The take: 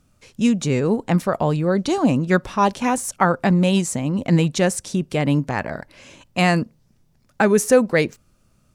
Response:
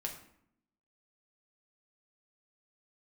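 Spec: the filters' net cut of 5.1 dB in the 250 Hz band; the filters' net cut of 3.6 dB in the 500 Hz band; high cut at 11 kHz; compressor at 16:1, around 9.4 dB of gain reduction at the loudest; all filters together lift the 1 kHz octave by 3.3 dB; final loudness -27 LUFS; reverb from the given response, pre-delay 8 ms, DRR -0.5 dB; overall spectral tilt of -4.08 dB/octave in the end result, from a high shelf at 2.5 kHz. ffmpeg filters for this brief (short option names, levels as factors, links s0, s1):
-filter_complex "[0:a]lowpass=11000,equalizer=f=250:t=o:g=-7,equalizer=f=500:t=o:g=-4,equalizer=f=1000:t=o:g=5,highshelf=f=2500:g=6,acompressor=threshold=0.126:ratio=16,asplit=2[s0][s1];[1:a]atrim=start_sample=2205,adelay=8[s2];[s1][s2]afir=irnorm=-1:irlink=0,volume=1.06[s3];[s0][s3]amix=inputs=2:normalize=0,volume=0.501"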